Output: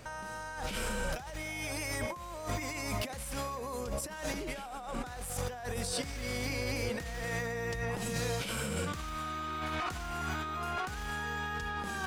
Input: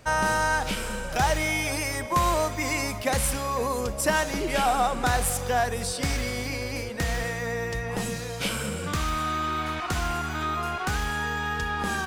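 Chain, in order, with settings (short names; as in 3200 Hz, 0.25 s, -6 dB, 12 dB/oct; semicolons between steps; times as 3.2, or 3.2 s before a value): negative-ratio compressor -33 dBFS, ratio -1; gain -4.5 dB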